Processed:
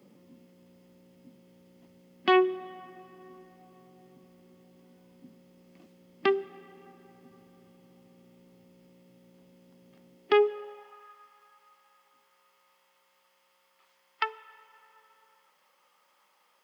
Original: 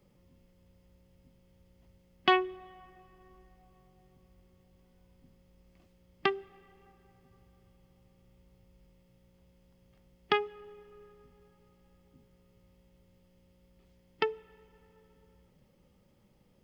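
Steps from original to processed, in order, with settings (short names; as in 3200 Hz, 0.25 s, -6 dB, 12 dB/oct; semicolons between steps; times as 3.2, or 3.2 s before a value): high-pass sweep 240 Hz -> 1100 Hz, 10.11–11.1; limiter -18 dBFS, peak gain reduction 10.5 dB; gain +6.5 dB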